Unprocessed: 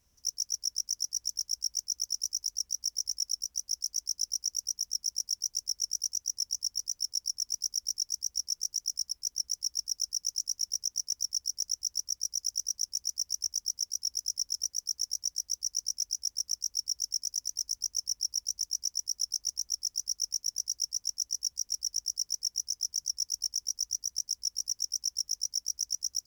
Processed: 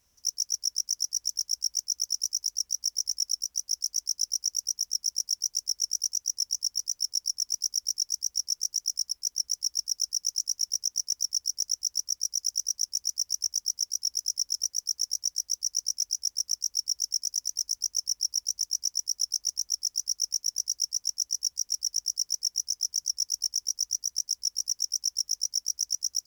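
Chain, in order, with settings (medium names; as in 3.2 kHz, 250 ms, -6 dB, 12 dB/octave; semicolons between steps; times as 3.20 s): bass shelf 350 Hz -7 dB; trim +3.5 dB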